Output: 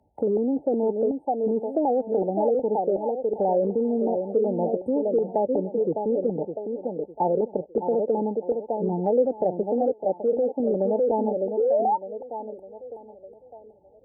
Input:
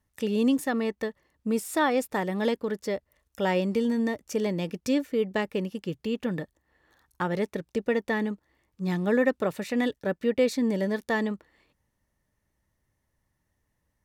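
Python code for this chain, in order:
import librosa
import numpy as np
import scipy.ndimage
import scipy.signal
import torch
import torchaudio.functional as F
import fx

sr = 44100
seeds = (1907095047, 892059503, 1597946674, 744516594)

p1 = scipy.signal.sosfilt(scipy.signal.butter(4, 41.0, 'highpass', fs=sr, output='sos'), x)
p2 = fx.echo_thinned(p1, sr, ms=606, feedback_pct=35, hz=220.0, wet_db=-6.5)
p3 = fx.spec_paint(p2, sr, seeds[0], shape='rise', start_s=11.57, length_s=1.24, low_hz=410.0, high_hz=5300.0, level_db=-26.0)
p4 = fx.filter_lfo_lowpass(p3, sr, shape='saw_down', hz=2.7, low_hz=400.0, high_hz=1800.0, q=3.1)
p5 = fx.brickwall_bandstop(p4, sr, low_hz=900.0, high_hz=8100.0)
p6 = fx.env_lowpass_down(p5, sr, base_hz=880.0, full_db=-17.0)
p7 = fx.low_shelf(p6, sr, hz=300.0, db=-9.0, at=(9.92, 10.6))
p8 = fx.over_compress(p7, sr, threshold_db=-25.0, ratio=-0.5)
p9 = p7 + F.gain(torch.from_numpy(p8), -1.5).numpy()
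p10 = fx.bass_treble(p9, sr, bass_db=-9, treble_db=3)
p11 = fx.band_squash(p10, sr, depth_pct=40)
y = F.gain(torch.from_numpy(p11), -1.5).numpy()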